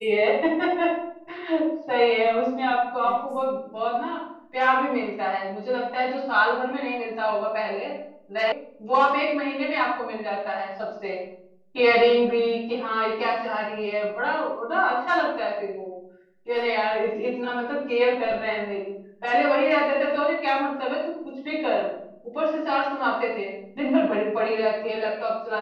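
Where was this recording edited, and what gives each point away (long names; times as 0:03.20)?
0:08.52: cut off before it has died away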